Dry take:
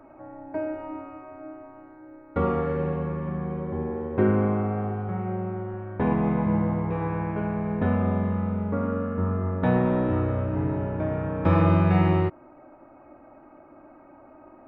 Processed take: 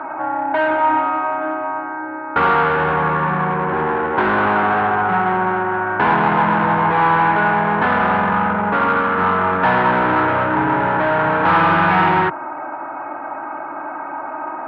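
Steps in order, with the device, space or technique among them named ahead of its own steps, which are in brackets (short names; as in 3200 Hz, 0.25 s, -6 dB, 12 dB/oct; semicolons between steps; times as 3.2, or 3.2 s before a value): overdrive pedal into a guitar cabinet (overdrive pedal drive 32 dB, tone 2000 Hz, clips at -8.5 dBFS; speaker cabinet 91–3400 Hz, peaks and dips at 97 Hz -7 dB, 230 Hz -8 dB, 380 Hz -4 dB, 540 Hz -8 dB, 920 Hz +8 dB, 1500 Hz +9 dB)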